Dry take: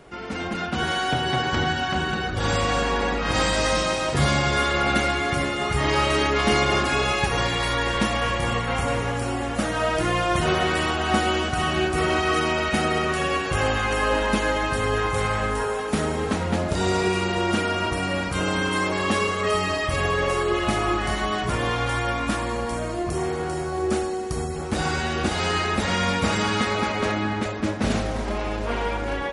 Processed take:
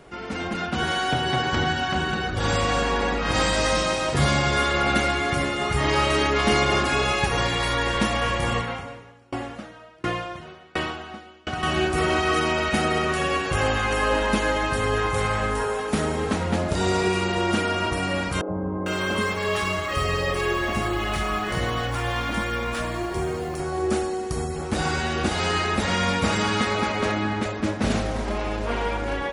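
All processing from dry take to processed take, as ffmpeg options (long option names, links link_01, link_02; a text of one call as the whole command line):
ffmpeg -i in.wav -filter_complex "[0:a]asettb=1/sr,asplit=3[link_01][link_02][link_03];[link_01]atrim=end=8.614[link_04];[link_02]atrim=start=8.61:end=11.63,asetpts=PTS-STARTPTS,afade=type=in:duration=0.004:curve=qsin,afade=type=out:start_time=3.016:duration=0.004:curve=qsin,acrossover=split=5800[link_05][link_06];[link_06]acompressor=threshold=-54dB:ratio=4:attack=1:release=60[link_07];[link_05][link_07]amix=inputs=2:normalize=0,highpass=82,aeval=exprs='val(0)*pow(10,-32*if(lt(mod(1.4*n/s,1),2*abs(1.4)/1000),1-mod(1.4*n/s,1)/(2*abs(1.4)/1000),(mod(1.4*n/s,1)-2*abs(1.4)/1000)/(1-2*abs(1.4)/1000))/20)':channel_layout=same[link_08];[link_03]atrim=start=11.626[link_09];[link_04][link_08]acrossfade=duration=0.004:curve1=hsin:curve2=qsin[link_10];[link_10][link_09]acrossfade=duration=0.004:curve1=qsin:curve2=hsin,asettb=1/sr,asplit=3[link_11][link_12][link_13];[link_11]atrim=end=18.414[link_14];[link_12]atrim=start=18.41:end=23.6,asetpts=PTS-STARTPTS,afade=type=in:duration=0.004:curve=qsin,afade=type=out:start_time=5.186:duration=0.004:curve=qsin,highshelf=frequency=6300:gain=-5,acrusher=bits=8:mode=log:mix=0:aa=0.000001,acrossover=split=270|860[link_15][link_16][link_17];[link_15]adelay=80[link_18];[link_17]adelay=450[link_19];[link_18][link_16][link_19]amix=inputs=3:normalize=0,atrim=end_sample=228879[link_20];[link_13]atrim=start=23.596[link_21];[link_14][link_20]acrossfade=duration=0.004:curve1=hsin:curve2=qsin[link_22];[link_22][link_21]acrossfade=duration=0.004:curve1=qsin:curve2=hsin" out.wav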